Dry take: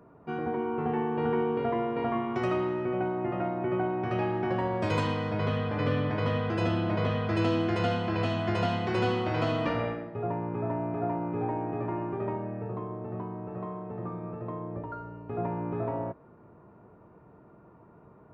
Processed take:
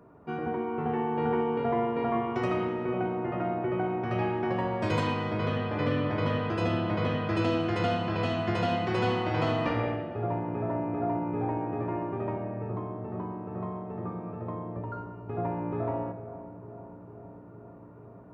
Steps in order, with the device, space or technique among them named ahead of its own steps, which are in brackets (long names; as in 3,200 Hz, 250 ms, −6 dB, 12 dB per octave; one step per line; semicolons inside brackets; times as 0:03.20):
dub delay into a spring reverb (feedback echo with a low-pass in the loop 450 ms, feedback 83%, low-pass 1,100 Hz, level −14.5 dB; spring reverb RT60 1.3 s, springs 44 ms, chirp 80 ms, DRR 8 dB)